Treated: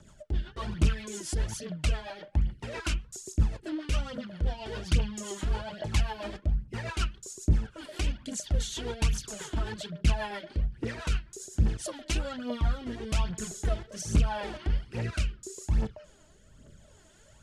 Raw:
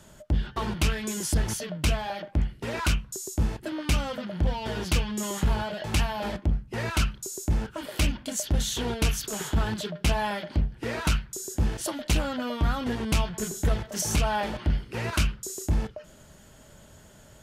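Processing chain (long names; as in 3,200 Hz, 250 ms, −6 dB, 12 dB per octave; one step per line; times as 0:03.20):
phase shifter 1.2 Hz, delay 3.3 ms, feedback 58%
low-pass filter 10,000 Hz 24 dB per octave
rotating-speaker cabinet horn 7.5 Hz, later 0.8 Hz, at 0:11.89
level −5 dB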